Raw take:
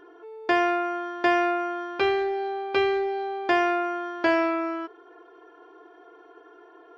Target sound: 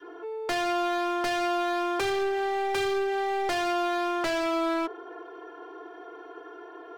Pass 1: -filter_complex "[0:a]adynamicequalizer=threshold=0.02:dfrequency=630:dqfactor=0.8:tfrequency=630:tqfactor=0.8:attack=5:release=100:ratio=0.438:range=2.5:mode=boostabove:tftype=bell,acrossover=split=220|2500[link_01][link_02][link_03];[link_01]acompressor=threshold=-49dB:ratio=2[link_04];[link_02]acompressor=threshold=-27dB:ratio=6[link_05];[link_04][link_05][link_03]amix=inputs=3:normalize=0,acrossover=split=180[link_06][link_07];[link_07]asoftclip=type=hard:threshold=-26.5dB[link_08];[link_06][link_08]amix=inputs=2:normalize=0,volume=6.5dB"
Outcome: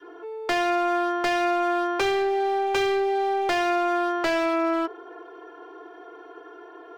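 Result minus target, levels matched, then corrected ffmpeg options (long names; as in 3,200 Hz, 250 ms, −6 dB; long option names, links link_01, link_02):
hard clipping: distortion −5 dB
-filter_complex "[0:a]adynamicequalizer=threshold=0.02:dfrequency=630:dqfactor=0.8:tfrequency=630:tqfactor=0.8:attack=5:release=100:ratio=0.438:range=2.5:mode=boostabove:tftype=bell,acrossover=split=220|2500[link_01][link_02][link_03];[link_01]acompressor=threshold=-49dB:ratio=2[link_04];[link_02]acompressor=threshold=-27dB:ratio=6[link_05];[link_04][link_05][link_03]amix=inputs=3:normalize=0,acrossover=split=180[link_06][link_07];[link_07]asoftclip=type=hard:threshold=-32.5dB[link_08];[link_06][link_08]amix=inputs=2:normalize=0,volume=6.5dB"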